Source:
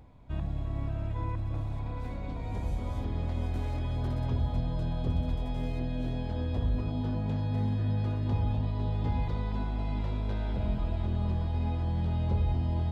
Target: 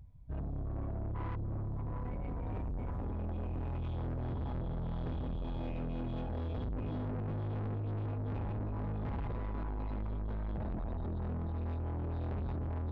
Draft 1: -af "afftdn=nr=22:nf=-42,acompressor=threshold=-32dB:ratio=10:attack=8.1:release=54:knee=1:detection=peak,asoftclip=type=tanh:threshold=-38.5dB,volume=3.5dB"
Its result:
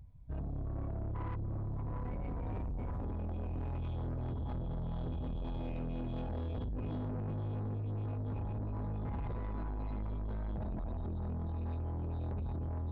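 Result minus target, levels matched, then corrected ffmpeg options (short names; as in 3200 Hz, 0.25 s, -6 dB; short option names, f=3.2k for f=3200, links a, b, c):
compressor: peak gain reduction +9.5 dB
-af "afftdn=nr=22:nf=-42,asoftclip=type=tanh:threshold=-38.5dB,volume=3.5dB"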